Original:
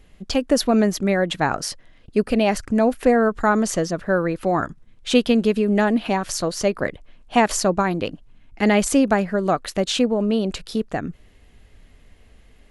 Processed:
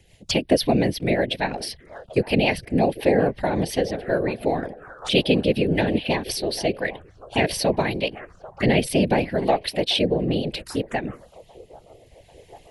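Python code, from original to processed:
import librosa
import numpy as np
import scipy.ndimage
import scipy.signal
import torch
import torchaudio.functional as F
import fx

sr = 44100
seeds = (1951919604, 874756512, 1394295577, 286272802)

y = fx.low_shelf(x, sr, hz=460.0, db=-11.5)
y = fx.echo_wet_bandpass(y, sr, ms=792, feedback_pct=44, hz=760.0, wet_db=-15.5)
y = fx.env_phaser(y, sr, low_hz=200.0, high_hz=1300.0, full_db=-27.0)
y = fx.rotary_switch(y, sr, hz=5.5, then_hz=0.65, switch_at_s=6.22)
y = fx.whisperise(y, sr, seeds[0])
y = y * 10.0 ** (8.0 / 20.0)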